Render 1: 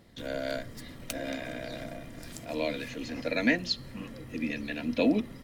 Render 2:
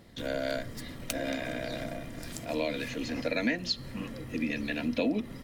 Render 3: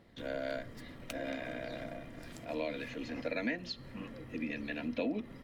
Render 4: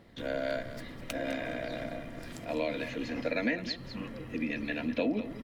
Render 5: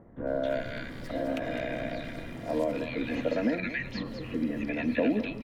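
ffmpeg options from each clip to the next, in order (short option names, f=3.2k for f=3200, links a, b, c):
-af "acompressor=threshold=-30dB:ratio=3,volume=3dB"
-af "bass=f=250:g=-3,treble=f=4k:g=-10,volume=-5dB"
-af "aecho=1:1:204:0.237,volume=4.5dB"
-filter_complex "[0:a]acrossover=split=2900[a][b];[b]acompressor=threshold=-54dB:ratio=4:attack=1:release=60[c];[a][c]amix=inputs=2:normalize=0,acrossover=split=1400[d][e];[e]adelay=270[f];[d][f]amix=inputs=2:normalize=0,volume=4dB"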